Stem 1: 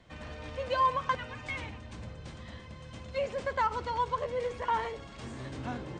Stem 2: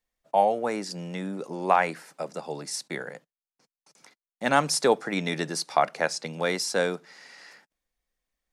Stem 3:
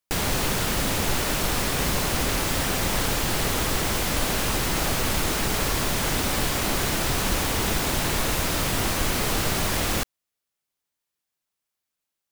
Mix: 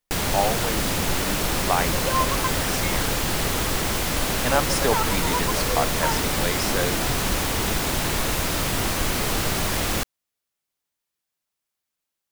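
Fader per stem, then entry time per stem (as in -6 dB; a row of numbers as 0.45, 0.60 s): +2.0, -2.0, +0.5 dB; 1.35, 0.00, 0.00 s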